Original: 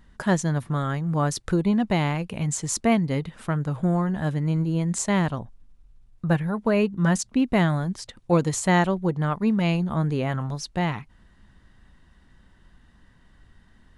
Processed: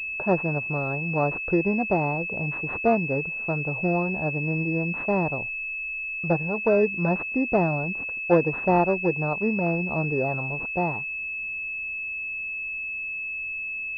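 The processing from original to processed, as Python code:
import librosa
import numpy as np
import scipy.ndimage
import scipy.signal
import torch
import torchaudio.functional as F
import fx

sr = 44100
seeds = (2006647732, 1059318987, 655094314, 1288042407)

y = fx.band_shelf(x, sr, hz=550.0, db=8.5, octaves=1.7)
y = fx.pwm(y, sr, carrier_hz=2600.0)
y = y * 10.0 ** (-5.0 / 20.0)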